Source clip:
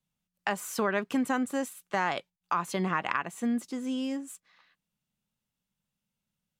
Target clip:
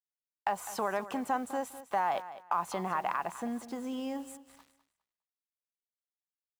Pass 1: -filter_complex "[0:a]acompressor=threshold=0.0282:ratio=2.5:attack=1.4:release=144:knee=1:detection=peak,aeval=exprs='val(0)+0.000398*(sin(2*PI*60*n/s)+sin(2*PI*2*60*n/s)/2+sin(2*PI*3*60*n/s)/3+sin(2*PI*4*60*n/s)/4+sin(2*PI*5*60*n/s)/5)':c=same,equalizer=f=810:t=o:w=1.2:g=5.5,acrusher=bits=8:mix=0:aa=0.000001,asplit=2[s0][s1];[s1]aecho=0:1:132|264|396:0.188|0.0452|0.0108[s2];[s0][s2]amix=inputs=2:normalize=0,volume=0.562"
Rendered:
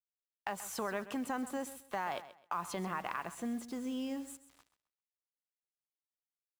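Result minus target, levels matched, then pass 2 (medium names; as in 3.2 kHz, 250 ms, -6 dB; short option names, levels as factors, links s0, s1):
echo 72 ms early; 1 kHz band -3.0 dB
-filter_complex "[0:a]acompressor=threshold=0.0282:ratio=2.5:attack=1.4:release=144:knee=1:detection=peak,aeval=exprs='val(0)+0.000398*(sin(2*PI*60*n/s)+sin(2*PI*2*60*n/s)/2+sin(2*PI*3*60*n/s)/3+sin(2*PI*4*60*n/s)/4+sin(2*PI*5*60*n/s)/5)':c=same,equalizer=f=810:t=o:w=1.2:g=15,acrusher=bits=8:mix=0:aa=0.000001,asplit=2[s0][s1];[s1]aecho=0:1:204|408|612:0.188|0.0452|0.0108[s2];[s0][s2]amix=inputs=2:normalize=0,volume=0.562"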